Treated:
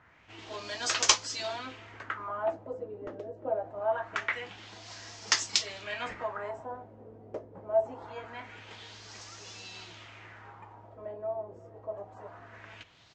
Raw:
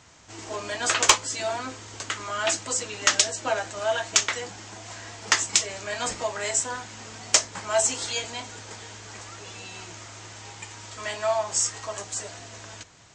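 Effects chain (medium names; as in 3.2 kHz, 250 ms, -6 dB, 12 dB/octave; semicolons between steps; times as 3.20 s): speakerphone echo 350 ms, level -23 dB; LFO low-pass sine 0.24 Hz 450–5500 Hz; trim -8 dB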